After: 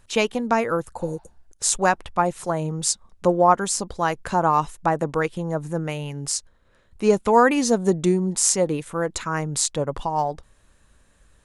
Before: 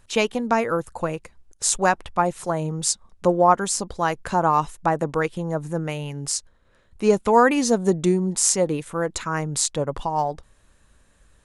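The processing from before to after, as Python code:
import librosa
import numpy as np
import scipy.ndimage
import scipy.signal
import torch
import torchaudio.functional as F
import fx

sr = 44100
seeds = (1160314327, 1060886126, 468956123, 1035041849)

y = fx.spec_repair(x, sr, seeds[0], start_s=1.04, length_s=0.41, low_hz=610.0, high_hz=5800.0, source='both')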